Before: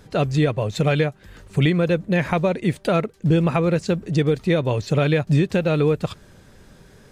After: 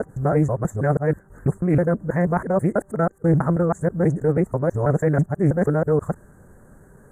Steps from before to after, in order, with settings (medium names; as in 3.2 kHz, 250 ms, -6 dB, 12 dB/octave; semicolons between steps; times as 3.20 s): time reversed locally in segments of 162 ms; inverse Chebyshev band-stop 2.4–5.3 kHz, stop band 40 dB; loudspeaker Doppler distortion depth 0.2 ms